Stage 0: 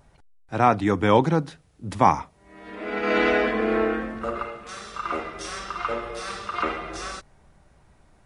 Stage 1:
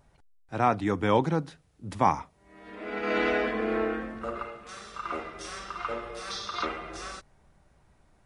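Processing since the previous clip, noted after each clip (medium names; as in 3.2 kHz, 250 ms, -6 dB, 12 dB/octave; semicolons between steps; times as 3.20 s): time-frequency box 6.31–6.66 s, 3.2–6.7 kHz +12 dB; trim -5.5 dB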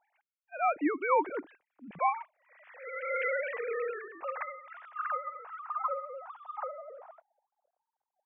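formants replaced by sine waves; low-pass sweep 2.3 kHz -> 520 Hz, 4.22–7.67 s; trim -6 dB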